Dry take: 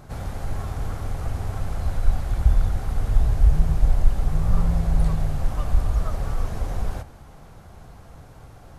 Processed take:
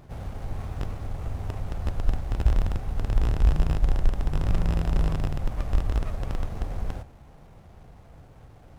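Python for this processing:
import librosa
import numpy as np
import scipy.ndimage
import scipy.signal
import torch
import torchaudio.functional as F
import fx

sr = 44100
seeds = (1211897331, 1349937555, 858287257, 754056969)

y = fx.rattle_buzz(x, sr, strikes_db=-20.0, level_db=-15.0)
y = fx.running_max(y, sr, window=17)
y = F.gain(torch.from_numpy(y), -4.0).numpy()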